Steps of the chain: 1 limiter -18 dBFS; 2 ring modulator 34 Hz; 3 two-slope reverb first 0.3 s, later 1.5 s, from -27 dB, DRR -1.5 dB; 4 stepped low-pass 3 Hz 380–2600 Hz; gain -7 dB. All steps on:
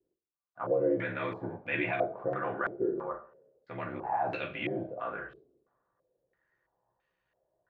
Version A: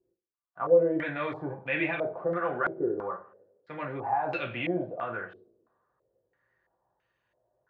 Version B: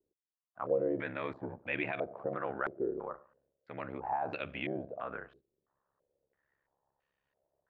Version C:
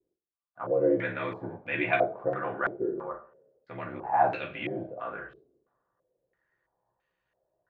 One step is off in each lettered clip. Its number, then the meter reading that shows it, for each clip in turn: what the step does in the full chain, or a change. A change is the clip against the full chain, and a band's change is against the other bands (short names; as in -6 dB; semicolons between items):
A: 2, momentary loudness spread change +3 LU; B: 3, crest factor change +2.5 dB; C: 1, crest factor change +4.0 dB